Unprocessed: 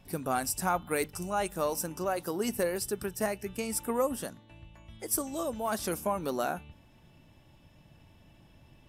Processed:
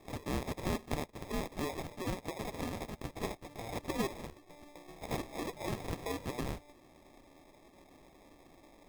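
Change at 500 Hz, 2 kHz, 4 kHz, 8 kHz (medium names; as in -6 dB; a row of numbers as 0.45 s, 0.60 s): -9.0 dB, -6.5 dB, -4.0 dB, -14.0 dB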